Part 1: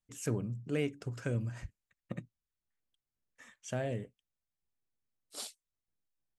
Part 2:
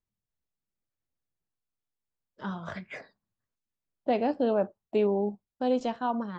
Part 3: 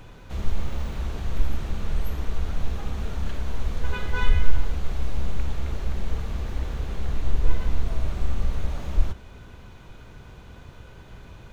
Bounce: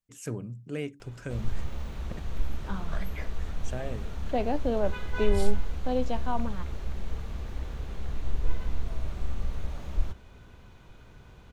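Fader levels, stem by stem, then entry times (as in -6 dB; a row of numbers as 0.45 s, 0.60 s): -1.0 dB, -2.5 dB, -6.5 dB; 0.00 s, 0.25 s, 1.00 s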